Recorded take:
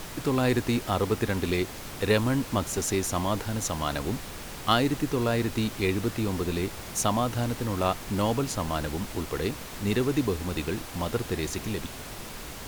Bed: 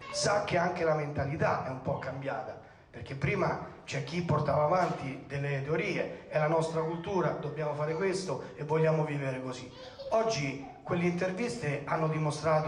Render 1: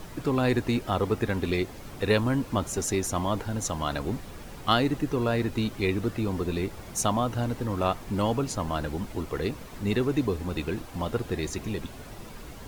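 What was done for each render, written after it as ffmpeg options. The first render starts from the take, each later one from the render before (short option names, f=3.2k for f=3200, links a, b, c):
-af "afftdn=nr=9:nf=-40"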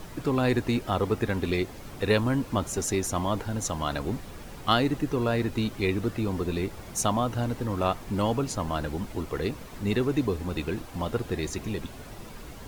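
-af anull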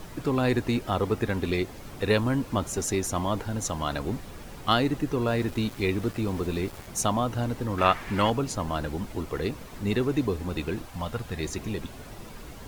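-filter_complex "[0:a]asettb=1/sr,asplit=3[a][b][c];[a]atrim=end=5.284[d];[b]atrim=start=5.28:end=6.87,asetpts=PTS-STARTPTS,afade=t=in:d=0.004:c=qsin,afade=t=out:st=1.586:d=0.004:c=qsin,aeval=exprs='val(0)*gte(abs(val(0)),0.01)':c=same[e];[c]atrim=start=6.866[f];[d][e]acrossfade=d=0.004:c1=hsin:c2=qsin[g];[g][f]acrossfade=d=0.004:c1=qsin:c2=hsin,asettb=1/sr,asplit=3[h][i][j];[h]atrim=end=7.784[k];[i]atrim=start=7.78:end=8.3,asetpts=PTS-STARTPTS,afade=t=in:d=0.004:c=qsin,afade=t=out:st=0.516:d=0.004:c=qsin,equalizer=f=1.9k:w=0.88:g=13.5[l];[j]atrim=start=8.296[m];[k][l]acrossfade=d=0.004:c1=hsin:c2=qsin[n];[n][m]acrossfade=d=0.004:c1=qsin:c2=hsin,asettb=1/sr,asplit=3[o][p][q];[o]atrim=end=10.884[r];[p]atrim=start=10.88:end=11.4,asetpts=PTS-STARTPTS,afade=t=in:d=0.004:c=qsin,afade=t=out:st=0.516:d=0.004:c=qsin,equalizer=f=350:t=o:w=0.89:g=-11[s];[q]atrim=start=11.396[t];[r][s]acrossfade=d=0.004:c1=hsin:c2=qsin[u];[u][t]acrossfade=d=0.004:c1=qsin:c2=hsin"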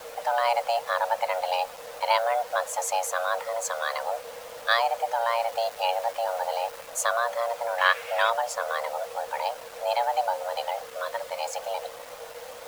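-af "afreqshift=460,acrusher=bits=6:mix=0:aa=0.5"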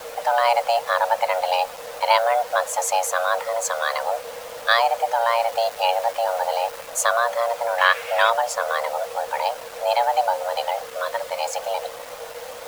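-af "volume=5.5dB,alimiter=limit=-3dB:level=0:latency=1"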